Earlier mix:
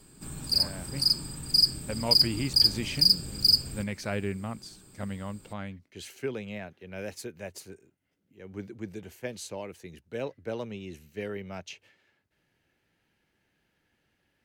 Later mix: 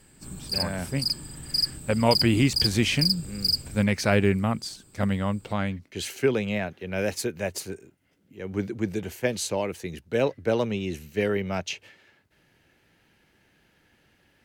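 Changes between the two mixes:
speech +10.5 dB
background: send −11.5 dB

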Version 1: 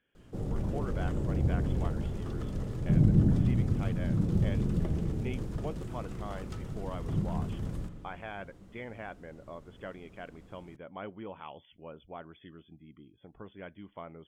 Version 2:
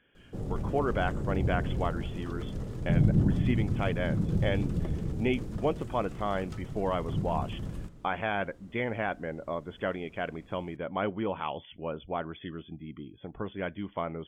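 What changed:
speech +11.0 dB
background: send −7.5 dB

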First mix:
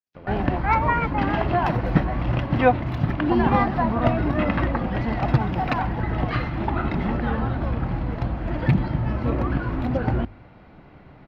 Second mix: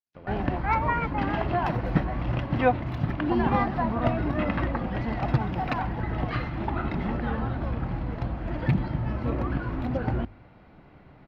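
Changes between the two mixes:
speech: send off
background −4.5 dB

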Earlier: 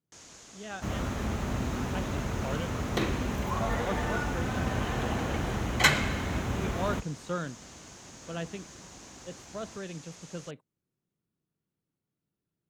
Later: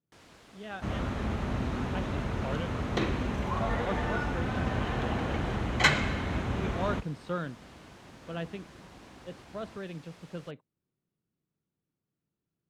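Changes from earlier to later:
first sound: remove low-pass with resonance 6,600 Hz, resonance Q 4.9
master: add high-frequency loss of the air 65 metres

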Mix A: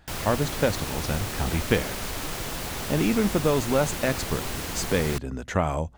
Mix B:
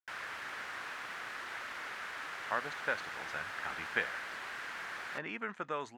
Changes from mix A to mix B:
speech: entry +2.25 s
master: add resonant band-pass 1,600 Hz, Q 2.4

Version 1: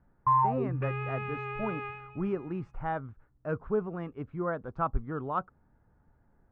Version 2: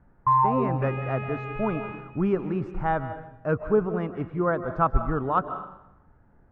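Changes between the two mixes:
speech +5.0 dB
reverb: on, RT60 0.85 s

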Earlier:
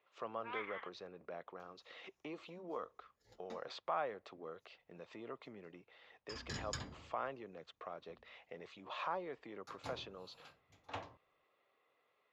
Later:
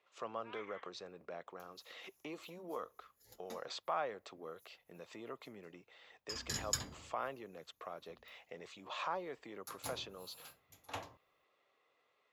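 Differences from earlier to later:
first sound −8.5 dB
master: remove high-frequency loss of the air 150 metres

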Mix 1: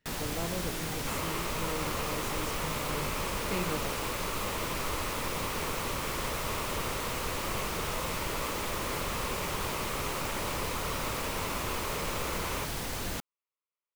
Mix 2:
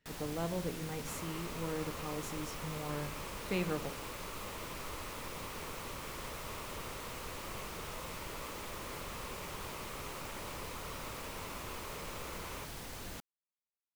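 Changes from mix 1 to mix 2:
first sound −10.0 dB
second sound −10.0 dB

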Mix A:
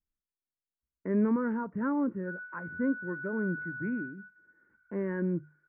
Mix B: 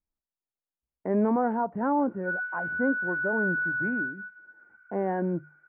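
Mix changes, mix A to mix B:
background +10.5 dB
master: remove phaser with its sweep stopped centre 1,800 Hz, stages 4

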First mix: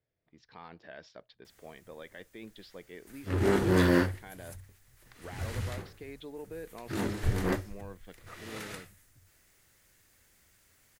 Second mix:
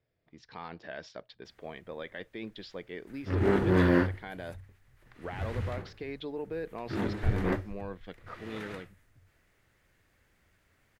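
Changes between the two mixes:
speech +6.0 dB
background: add bass and treble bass +1 dB, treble −15 dB

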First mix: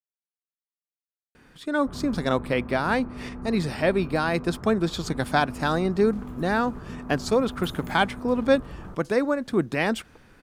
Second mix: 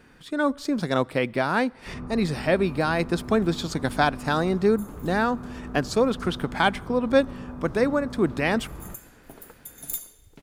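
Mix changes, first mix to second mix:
speech: entry −1.35 s
second sound: entry −2.85 s
reverb: on, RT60 1.7 s

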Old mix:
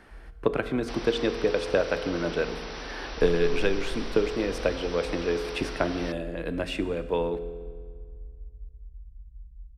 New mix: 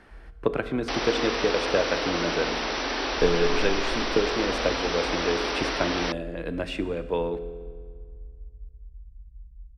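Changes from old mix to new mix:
second sound +11.5 dB
master: add high-shelf EQ 11,000 Hz −11 dB

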